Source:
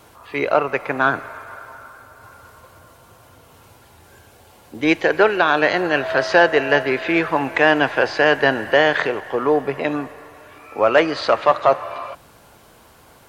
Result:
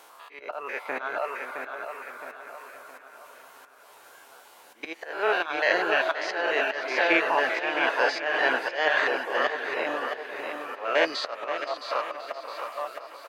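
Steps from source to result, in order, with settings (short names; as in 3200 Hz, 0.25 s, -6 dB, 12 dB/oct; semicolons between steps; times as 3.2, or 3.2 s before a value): stepped spectrum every 0.1 s; HPF 590 Hz 12 dB/oct; on a send: feedback echo 0.665 s, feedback 43%, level -6 dB; on the sum: reverb removal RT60 0.51 s; auto swell 0.283 s; doubler 12 ms -13 dB; warbling echo 0.525 s, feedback 48%, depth 90 cents, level -12 dB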